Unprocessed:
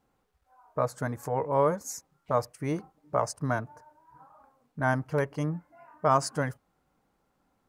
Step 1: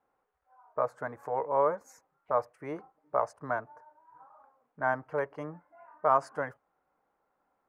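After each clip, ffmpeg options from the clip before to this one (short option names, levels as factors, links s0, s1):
-filter_complex "[0:a]acrossover=split=400 2100:gain=0.158 1 0.1[s0][s1][s2];[s0][s1][s2]amix=inputs=3:normalize=0"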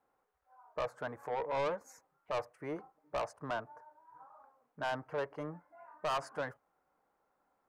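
-af "asoftclip=type=tanh:threshold=0.0355,volume=0.891"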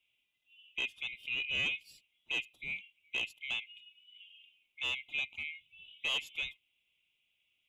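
-af "afftfilt=real='real(if(lt(b,920),b+92*(1-2*mod(floor(b/92),2)),b),0)':imag='imag(if(lt(b,920),b+92*(1-2*mod(floor(b/92),2)),b),0)':win_size=2048:overlap=0.75"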